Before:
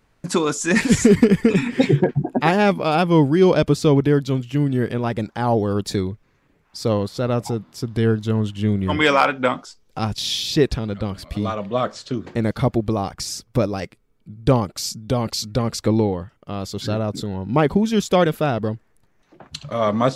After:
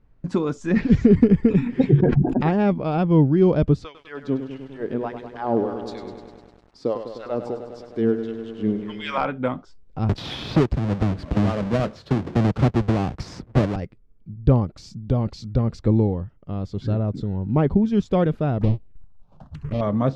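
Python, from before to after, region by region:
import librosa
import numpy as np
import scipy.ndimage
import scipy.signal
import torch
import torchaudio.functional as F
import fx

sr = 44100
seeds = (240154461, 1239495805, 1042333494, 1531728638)

y = fx.chain(x, sr, fx.lowpass(hz=5500.0, slope=24),
    fx.notch(hz=940.0, q=11.0), at=(0.7, 1.12))
y = fx.chain(y, sr, fx.high_shelf(hz=4400.0, db=6.0),
    fx.sustainer(db_per_s=36.0), at=(1.95, 2.43))
y = fx.chain(y, sr, fx.filter_lfo_highpass(shape='sine', hz=1.6, low_hz=260.0, high_hz=3600.0, q=1.4),
    fx.echo_crushed(ms=101, feedback_pct=80, bits=7, wet_db=-9.5), at=(3.84, 9.18))
y = fx.chain(y, sr, fx.halfwave_hold(),
    fx.highpass(hz=150.0, slope=6),
    fx.band_squash(depth_pct=70), at=(10.09, 13.76))
y = fx.chain(y, sr, fx.halfwave_hold(),
    fx.high_shelf(hz=8400.0, db=-9.5),
    fx.env_phaser(low_hz=280.0, high_hz=1500.0, full_db=-23.0), at=(18.61, 19.81))
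y = scipy.signal.sosfilt(scipy.signal.butter(2, 6100.0, 'lowpass', fs=sr, output='sos'), y)
y = fx.tilt_eq(y, sr, slope=-3.5)
y = y * librosa.db_to_amplitude(-8.0)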